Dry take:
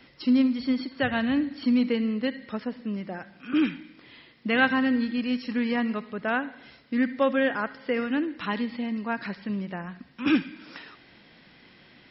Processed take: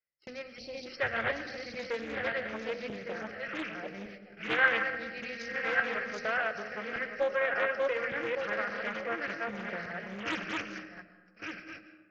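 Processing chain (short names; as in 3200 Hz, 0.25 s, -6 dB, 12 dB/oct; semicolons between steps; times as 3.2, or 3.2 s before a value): regenerating reverse delay 0.58 s, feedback 44%, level -1 dB; gate -36 dBFS, range -40 dB; high shelf 2500 Hz +10.5 dB; notches 60/120/180/240/300/360/420/480 Hz; in parallel at -2.5 dB: compressor, threshold -29 dBFS, peak gain reduction 16 dB; on the sum: fixed phaser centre 970 Hz, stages 6; digital reverb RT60 1.3 s, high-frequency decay 0.45×, pre-delay 85 ms, DRR 10 dB; spectral gain 0.59–0.87, 880–2300 Hz -18 dB; Doppler distortion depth 0.51 ms; gain -7.5 dB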